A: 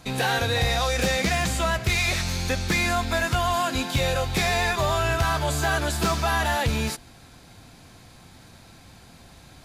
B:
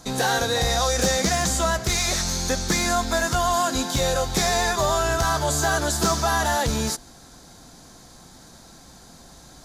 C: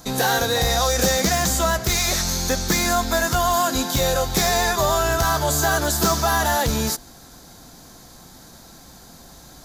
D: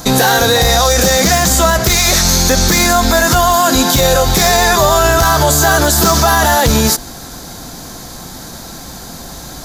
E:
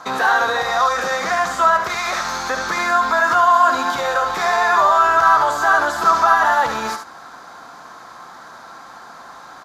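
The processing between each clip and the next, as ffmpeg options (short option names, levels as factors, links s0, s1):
-af "equalizer=f=100:t=o:w=0.67:g=-11,equalizer=f=2500:t=o:w=0.67:g=-11,equalizer=f=6300:t=o:w=0.67:g=7,volume=1.41"
-af "aexciter=amount=3.1:drive=6.4:freq=12000,volume=1.26"
-af "alimiter=level_in=6.31:limit=0.891:release=50:level=0:latency=1,volume=0.891"
-filter_complex "[0:a]bandpass=f=1200:t=q:w=2.7:csg=0,asplit=2[s0][s1];[s1]aecho=0:1:72:0.422[s2];[s0][s2]amix=inputs=2:normalize=0,volume=1.41"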